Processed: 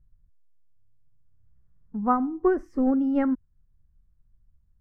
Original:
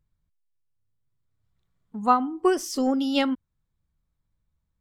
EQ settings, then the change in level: tilt -4.5 dB/oct; resonant high shelf 2500 Hz -12.5 dB, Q 3; -7.0 dB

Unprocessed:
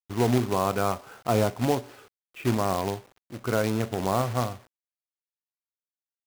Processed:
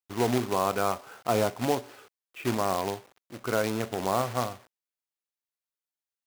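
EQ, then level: low shelf 190 Hz -10 dB; 0.0 dB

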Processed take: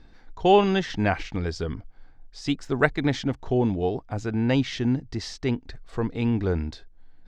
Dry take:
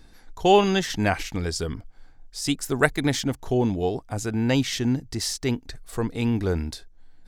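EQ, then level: air absorption 170 m; 0.0 dB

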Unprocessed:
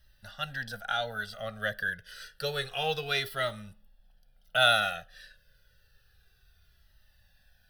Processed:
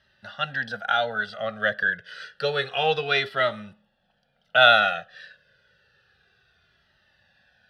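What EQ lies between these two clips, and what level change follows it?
BPF 180–3200 Hz; +8.5 dB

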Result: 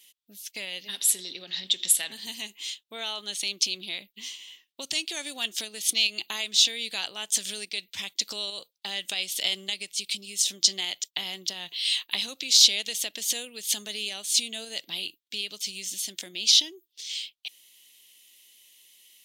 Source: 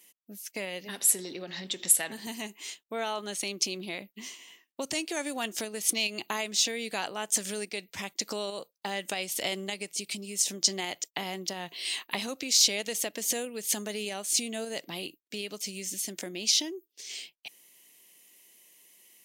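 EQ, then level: low shelf 66 Hz +9 dB; high shelf 2200 Hz +9 dB; bell 3500 Hz +13.5 dB 0.91 oct; -9.0 dB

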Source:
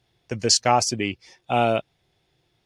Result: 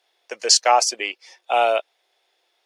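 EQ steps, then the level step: HPF 490 Hz 24 dB/oct; +3.5 dB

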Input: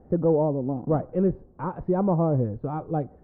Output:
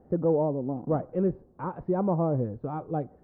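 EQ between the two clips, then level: low shelf 73 Hz -9.5 dB; -2.5 dB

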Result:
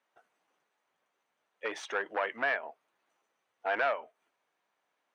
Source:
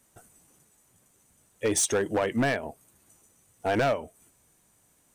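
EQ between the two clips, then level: HPF 690 Hz 12 dB/oct; dynamic EQ 1500 Hz, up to +7 dB, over -44 dBFS, Q 0.7; air absorption 290 m; -3.5 dB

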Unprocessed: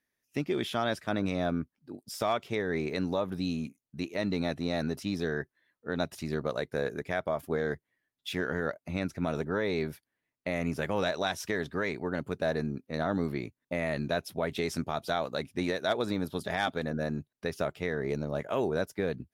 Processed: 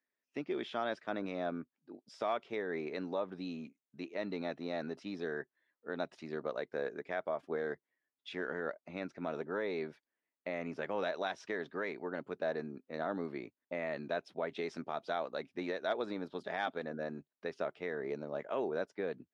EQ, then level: BPF 290–6800 Hz; air absorption 62 m; high shelf 3500 Hz -7.5 dB; -4.5 dB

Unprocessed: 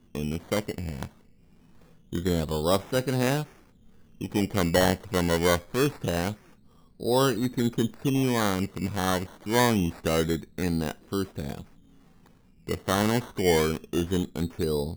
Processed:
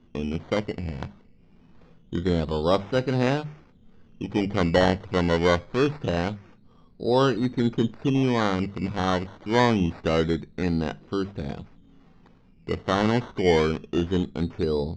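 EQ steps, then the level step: Bessel low-pass 3800 Hz, order 6; notches 50/100/150/200 Hz; notch 1700 Hz, Q 27; +2.5 dB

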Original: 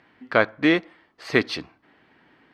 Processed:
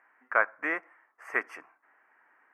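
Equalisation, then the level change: HPF 1300 Hz 12 dB/oct; Butterworth band-stop 3900 Hz, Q 0.59; high shelf 3000 Hz -11 dB; +4.0 dB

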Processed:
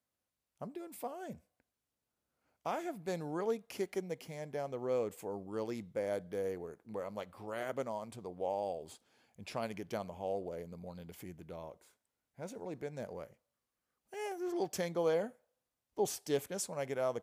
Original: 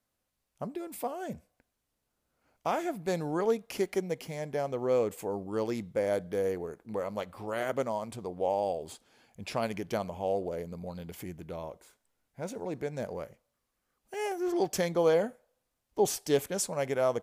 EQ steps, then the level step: HPF 61 Hz; -7.0 dB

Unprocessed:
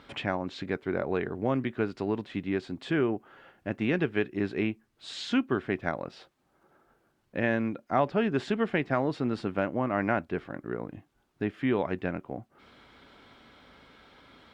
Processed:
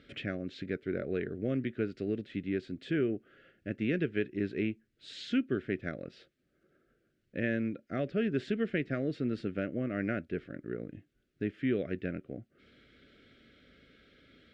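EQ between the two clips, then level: Butterworth band-stop 920 Hz, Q 0.91; LPF 3500 Hz 6 dB/oct; -3.0 dB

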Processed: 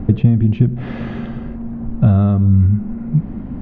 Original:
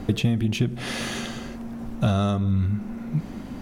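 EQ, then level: tone controls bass +8 dB, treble -10 dB; tape spacing loss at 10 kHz 40 dB; +4.0 dB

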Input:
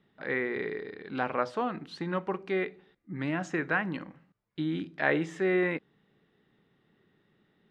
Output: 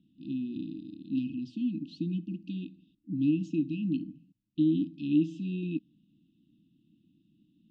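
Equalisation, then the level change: brick-wall FIR band-stop 330–2500 Hz; air absorption 130 m; bell 340 Hz +11.5 dB 1.8 oct; -2.0 dB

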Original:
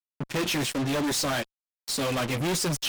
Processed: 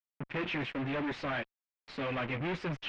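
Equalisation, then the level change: ladder low-pass 2900 Hz, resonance 35%; 0.0 dB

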